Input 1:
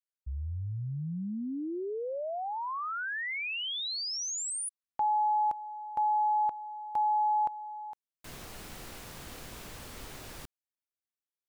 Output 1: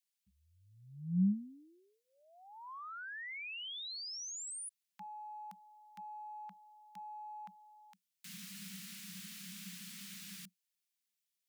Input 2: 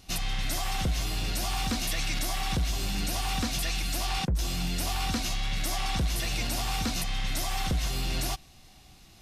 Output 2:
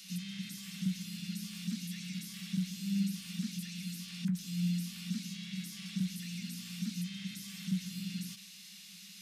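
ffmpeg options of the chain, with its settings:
-filter_complex "[0:a]acrossover=split=1800[s0][s1];[s0]asuperpass=centerf=190:order=4:qfactor=6.5[s2];[s1]acompressor=threshold=0.00251:ratio=6:attack=0.15:release=33:knee=1:detection=peak[s3];[s2][s3]amix=inputs=2:normalize=0,volume=2.37"

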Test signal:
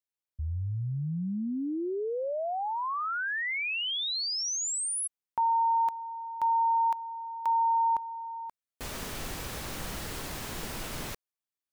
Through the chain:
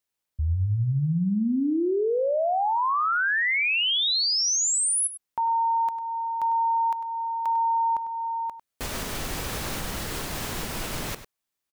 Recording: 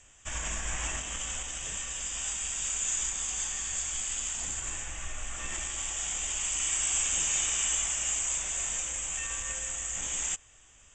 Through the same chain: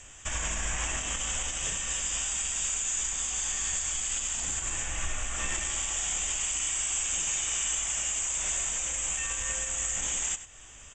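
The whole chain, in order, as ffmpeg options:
-filter_complex "[0:a]alimiter=level_in=1.88:limit=0.0631:level=0:latency=1:release=285,volume=0.531,asplit=2[s0][s1];[s1]adelay=99.13,volume=0.251,highshelf=f=4000:g=-2.23[s2];[s0][s2]amix=inputs=2:normalize=0,volume=2.66"

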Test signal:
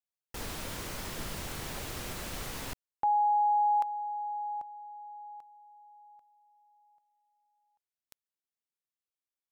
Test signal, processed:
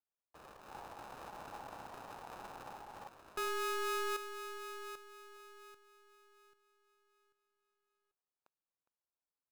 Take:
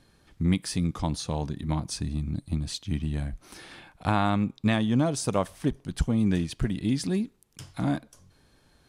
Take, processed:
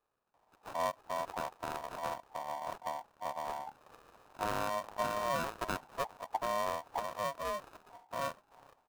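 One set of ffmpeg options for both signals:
-filter_complex "[0:a]acrossover=split=1600|4800[s0][s1][s2];[s0]adelay=340[s3];[s1]adelay=750[s4];[s3][s4][s2]amix=inputs=3:normalize=0,acrusher=samples=35:mix=1:aa=0.000001,aeval=exprs='val(0)*sin(2*PI*830*n/s)':c=same,volume=0.422"

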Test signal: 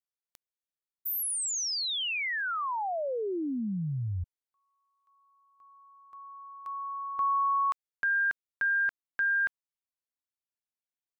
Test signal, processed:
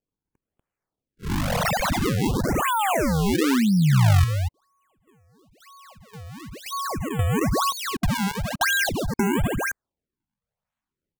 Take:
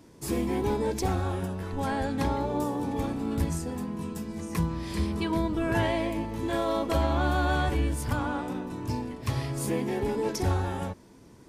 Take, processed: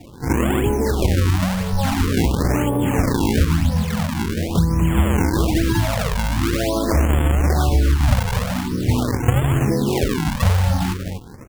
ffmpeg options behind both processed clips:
-af "aecho=1:1:243:0.422,acompressor=threshold=0.0282:ratio=6:attack=88:release=85:knee=1:detection=rms,lowshelf=f=200:g=9.5,aresample=22050,aresample=44100,acrusher=samples=41:mix=1:aa=0.000001:lfo=1:lforange=65.6:lforate=1,afftfilt=real='re*(1-between(b*sr/1024,300*pow(5000/300,0.5+0.5*sin(2*PI*0.45*pts/sr))/1.41,300*pow(5000/300,0.5+0.5*sin(2*PI*0.45*pts/sr))*1.41))':imag='im*(1-between(b*sr/1024,300*pow(5000/300,0.5+0.5*sin(2*PI*0.45*pts/sr))/1.41,300*pow(5000/300,0.5+0.5*sin(2*PI*0.45*pts/sr))*1.41))':win_size=1024:overlap=0.75,volume=2.66"

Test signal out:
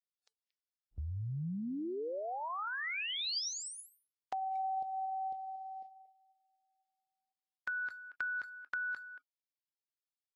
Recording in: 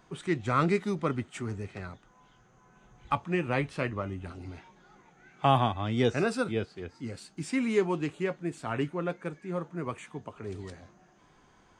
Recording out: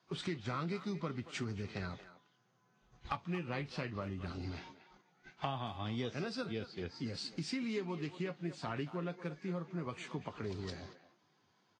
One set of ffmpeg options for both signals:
-filter_complex "[0:a]lowpass=f=4800:t=q:w=3,adynamicequalizer=threshold=0.00562:dfrequency=170:dqfactor=2.3:tfrequency=170:tqfactor=2.3:attack=5:release=100:ratio=0.375:range=2.5:mode=boostabove:tftype=bell,acompressor=threshold=0.0126:ratio=6,agate=range=0.178:threshold=0.002:ratio=16:detection=peak,asplit=2[s0][s1];[s1]adelay=230,highpass=300,lowpass=3400,asoftclip=type=hard:threshold=0.0168,volume=0.251[s2];[s0][s2]amix=inputs=2:normalize=0,volume=1.19" -ar 44100 -c:a libvorbis -b:a 32k

